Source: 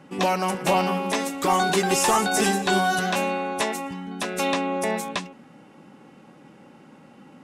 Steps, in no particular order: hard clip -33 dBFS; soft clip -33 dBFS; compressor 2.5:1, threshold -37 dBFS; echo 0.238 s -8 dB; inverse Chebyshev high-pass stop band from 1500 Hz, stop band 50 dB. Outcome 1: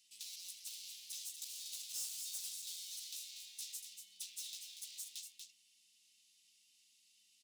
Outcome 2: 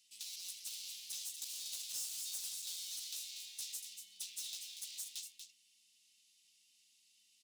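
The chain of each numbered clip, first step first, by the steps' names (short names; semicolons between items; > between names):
hard clip > echo > compressor > inverse Chebyshev high-pass > soft clip; hard clip > inverse Chebyshev high-pass > compressor > echo > soft clip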